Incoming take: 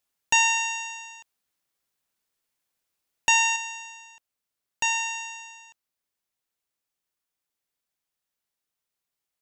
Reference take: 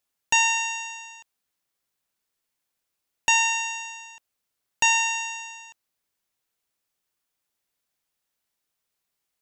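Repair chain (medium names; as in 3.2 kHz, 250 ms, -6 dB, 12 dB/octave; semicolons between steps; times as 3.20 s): gain correction +5 dB, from 3.56 s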